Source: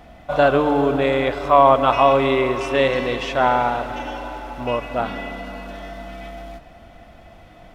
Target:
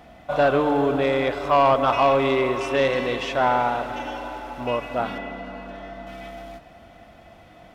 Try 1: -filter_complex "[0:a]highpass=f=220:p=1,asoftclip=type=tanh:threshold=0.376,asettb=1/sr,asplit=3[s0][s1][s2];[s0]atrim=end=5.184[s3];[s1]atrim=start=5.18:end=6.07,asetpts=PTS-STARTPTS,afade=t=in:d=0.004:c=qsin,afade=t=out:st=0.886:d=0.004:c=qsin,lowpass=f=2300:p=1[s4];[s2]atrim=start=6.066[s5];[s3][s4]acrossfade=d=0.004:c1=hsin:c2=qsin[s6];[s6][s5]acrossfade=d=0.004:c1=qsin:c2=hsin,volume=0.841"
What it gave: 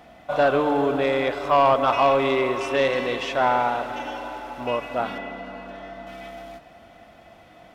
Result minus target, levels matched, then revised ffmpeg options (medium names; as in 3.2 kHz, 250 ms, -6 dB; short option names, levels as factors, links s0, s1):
125 Hz band -3.5 dB
-filter_complex "[0:a]highpass=f=92:p=1,asoftclip=type=tanh:threshold=0.376,asettb=1/sr,asplit=3[s0][s1][s2];[s0]atrim=end=5.184[s3];[s1]atrim=start=5.18:end=6.07,asetpts=PTS-STARTPTS,afade=t=in:d=0.004:c=qsin,afade=t=out:st=0.886:d=0.004:c=qsin,lowpass=f=2300:p=1[s4];[s2]atrim=start=6.066[s5];[s3][s4]acrossfade=d=0.004:c1=hsin:c2=qsin[s6];[s6][s5]acrossfade=d=0.004:c1=qsin:c2=hsin,volume=0.841"